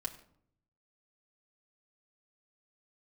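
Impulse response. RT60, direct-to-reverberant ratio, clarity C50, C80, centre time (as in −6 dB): 0.65 s, 0.5 dB, 13.0 dB, 15.0 dB, 9 ms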